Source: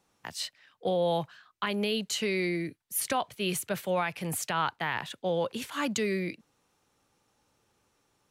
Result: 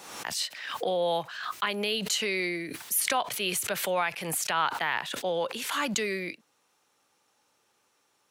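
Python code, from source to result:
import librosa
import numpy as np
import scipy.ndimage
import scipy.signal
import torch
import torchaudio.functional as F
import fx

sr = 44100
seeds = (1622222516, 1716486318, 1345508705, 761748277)

y = fx.highpass(x, sr, hz=620.0, slope=6)
y = fx.pre_swell(y, sr, db_per_s=49.0)
y = F.gain(torch.from_numpy(y), 3.5).numpy()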